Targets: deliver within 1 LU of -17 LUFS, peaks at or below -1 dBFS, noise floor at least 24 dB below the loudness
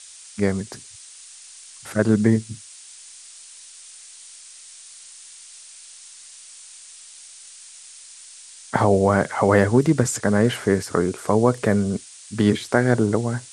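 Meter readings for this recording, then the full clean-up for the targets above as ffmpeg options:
noise floor -44 dBFS; noise floor target -45 dBFS; loudness -20.5 LUFS; peak level -2.0 dBFS; loudness target -17.0 LUFS
-> -af "afftdn=nr=6:nf=-44"
-af "volume=1.5,alimiter=limit=0.891:level=0:latency=1"

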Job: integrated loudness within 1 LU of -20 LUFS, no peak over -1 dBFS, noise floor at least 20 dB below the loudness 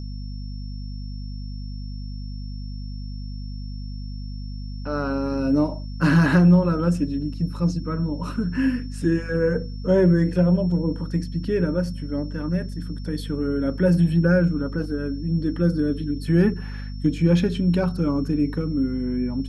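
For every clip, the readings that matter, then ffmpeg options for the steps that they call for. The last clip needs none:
hum 50 Hz; highest harmonic 250 Hz; hum level -29 dBFS; steady tone 5.4 kHz; tone level -48 dBFS; loudness -22.5 LUFS; peak level -6.5 dBFS; loudness target -20.0 LUFS
-> -af "bandreject=f=50:t=h:w=4,bandreject=f=100:t=h:w=4,bandreject=f=150:t=h:w=4,bandreject=f=200:t=h:w=4,bandreject=f=250:t=h:w=4"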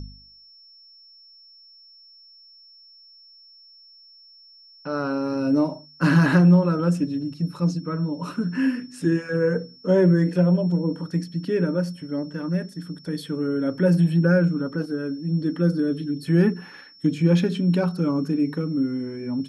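hum not found; steady tone 5.4 kHz; tone level -48 dBFS
-> -af "bandreject=f=5400:w=30"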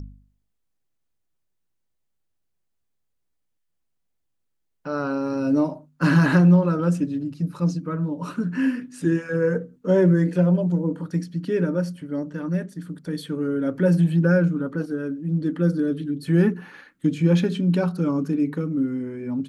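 steady tone not found; loudness -22.5 LUFS; peak level -6.5 dBFS; loudness target -20.0 LUFS
-> -af "volume=1.33"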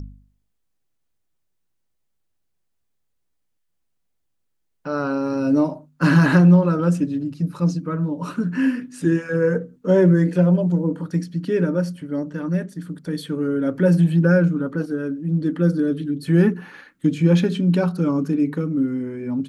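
loudness -20.0 LUFS; peak level -4.0 dBFS; noise floor -72 dBFS

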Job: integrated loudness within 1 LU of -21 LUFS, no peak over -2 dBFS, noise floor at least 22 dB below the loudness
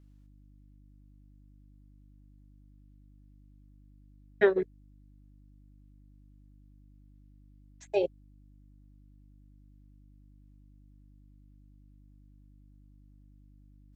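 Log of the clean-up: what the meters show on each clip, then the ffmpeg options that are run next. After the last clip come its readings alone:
hum 50 Hz; highest harmonic 300 Hz; hum level -54 dBFS; loudness -29.5 LUFS; peak level -10.5 dBFS; loudness target -21.0 LUFS
-> -af "bandreject=f=50:t=h:w=4,bandreject=f=100:t=h:w=4,bandreject=f=150:t=h:w=4,bandreject=f=200:t=h:w=4,bandreject=f=250:t=h:w=4,bandreject=f=300:t=h:w=4"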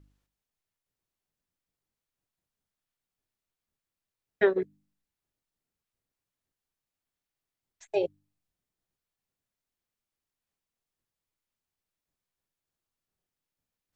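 hum not found; loudness -29.0 LUFS; peak level -11.0 dBFS; loudness target -21.0 LUFS
-> -af "volume=2.51"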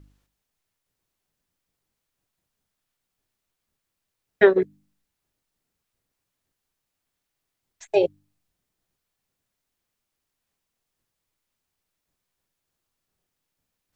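loudness -21.5 LUFS; peak level -3.0 dBFS; noise floor -82 dBFS

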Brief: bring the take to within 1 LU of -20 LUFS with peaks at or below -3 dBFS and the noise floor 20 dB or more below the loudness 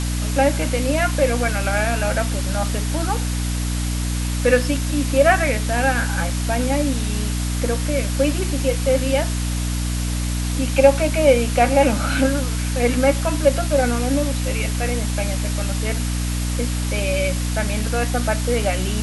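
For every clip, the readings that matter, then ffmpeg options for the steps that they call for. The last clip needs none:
hum 60 Hz; highest harmonic 300 Hz; hum level -20 dBFS; noise floor -23 dBFS; noise floor target -41 dBFS; loudness -20.5 LUFS; peak level -1.5 dBFS; loudness target -20.0 LUFS
-> -af "bandreject=f=60:t=h:w=6,bandreject=f=120:t=h:w=6,bandreject=f=180:t=h:w=6,bandreject=f=240:t=h:w=6,bandreject=f=300:t=h:w=6"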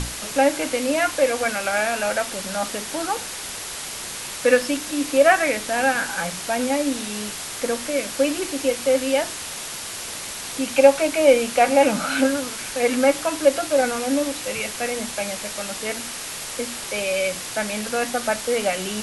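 hum not found; noise floor -33 dBFS; noise floor target -42 dBFS
-> -af "afftdn=nr=9:nf=-33"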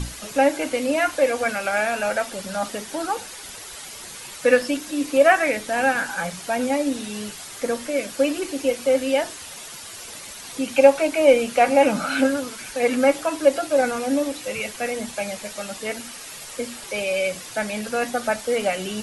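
noise floor -38 dBFS; noise floor target -42 dBFS
-> -af "afftdn=nr=6:nf=-38"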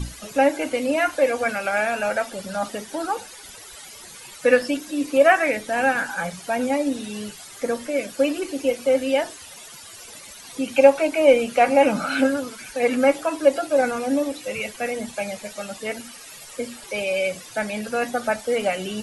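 noise floor -42 dBFS; noise floor target -43 dBFS
-> -af "afftdn=nr=6:nf=-42"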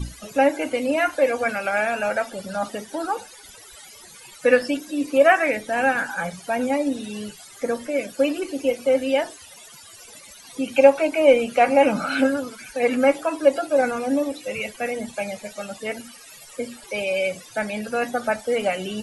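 noise floor -45 dBFS; loudness -22.0 LUFS; peak level -2.0 dBFS; loudness target -20.0 LUFS
-> -af "volume=1.26,alimiter=limit=0.708:level=0:latency=1"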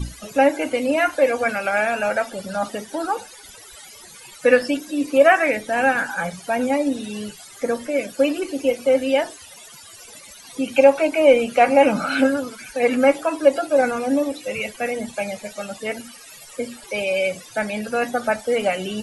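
loudness -20.5 LUFS; peak level -3.0 dBFS; noise floor -43 dBFS

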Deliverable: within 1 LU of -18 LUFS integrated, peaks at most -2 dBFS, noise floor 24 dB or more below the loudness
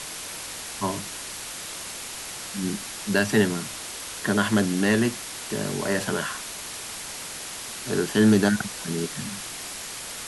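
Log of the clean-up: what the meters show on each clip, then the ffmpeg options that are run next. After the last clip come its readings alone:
noise floor -36 dBFS; noise floor target -51 dBFS; loudness -26.5 LUFS; peak level -7.0 dBFS; loudness target -18.0 LUFS
-> -af "afftdn=nr=15:nf=-36"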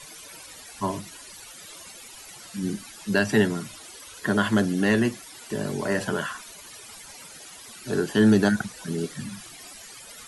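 noise floor -45 dBFS; noise floor target -49 dBFS
-> -af "afftdn=nr=6:nf=-45"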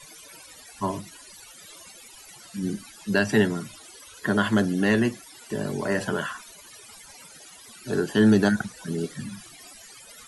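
noise floor -48 dBFS; noise floor target -49 dBFS
-> -af "afftdn=nr=6:nf=-48"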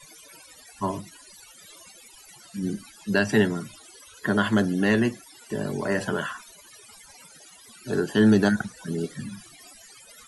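noise floor -51 dBFS; loudness -25.0 LUFS; peak level -7.5 dBFS; loudness target -18.0 LUFS
-> -af "volume=2.24,alimiter=limit=0.794:level=0:latency=1"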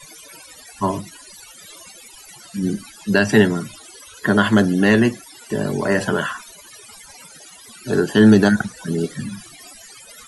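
loudness -18.5 LUFS; peak level -2.0 dBFS; noise floor -44 dBFS

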